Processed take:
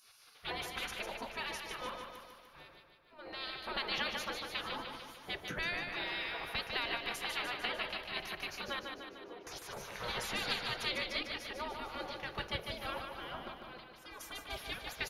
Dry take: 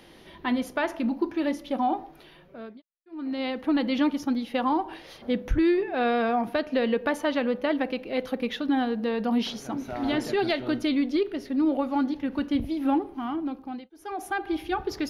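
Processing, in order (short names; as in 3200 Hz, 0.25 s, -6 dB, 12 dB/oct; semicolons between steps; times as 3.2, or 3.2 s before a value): spectral gate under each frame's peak -20 dB weak; 8.79–9.47 band-pass 360 Hz, Q 2.1; feedback echo 0.149 s, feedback 58%, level -5.5 dB; gain +1 dB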